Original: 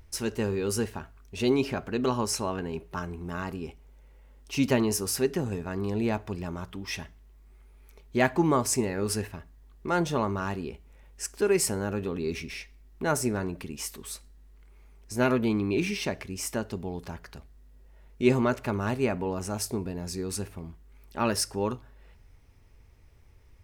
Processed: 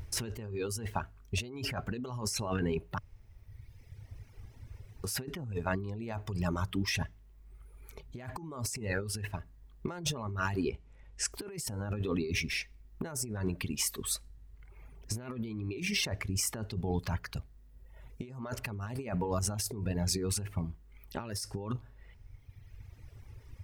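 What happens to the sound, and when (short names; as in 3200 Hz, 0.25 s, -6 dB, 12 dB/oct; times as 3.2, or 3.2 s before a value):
2.98–5.04 room tone
10.69–11.32 LPF 7200 Hz
whole clip: reverb removal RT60 1.6 s; bell 110 Hz +9.5 dB 0.92 oct; negative-ratio compressor -36 dBFS, ratio -1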